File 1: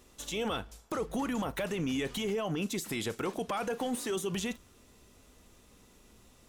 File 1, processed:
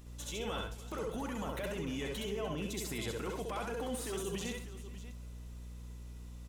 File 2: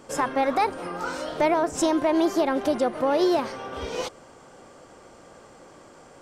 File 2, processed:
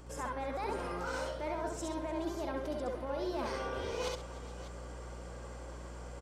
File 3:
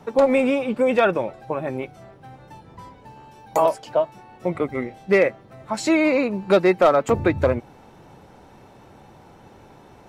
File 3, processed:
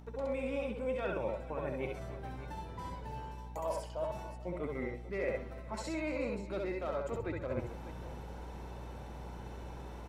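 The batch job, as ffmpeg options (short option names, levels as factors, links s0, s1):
-af "areverse,acompressor=threshold=0.0224:ratio=10,areverse,aeval=exprs='val(0)+0.00398*(sin(2*PI*60*n/s)+sin(2*PI*2*60*n/s)/2+sin(2*PI*3*60*n/s)/3+sin(2*PI*4*60*n/s)/4+sin(2*PI*5*60*n/s)/5)':c=same,acompressor=mode=upward:threshold=0.00126:ratio=2.5,aecho=1:1:66|68|130|298|432|595:0.631|0.501|0.224|0.112|0.106|0.2,volume=0.668"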